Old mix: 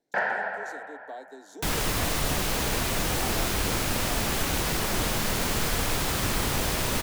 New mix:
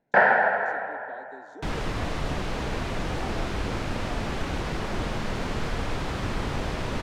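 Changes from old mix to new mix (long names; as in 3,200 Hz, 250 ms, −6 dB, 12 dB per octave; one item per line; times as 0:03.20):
first sound +11.5 dB
master: add head-to-tape spacing loss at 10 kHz 22 dB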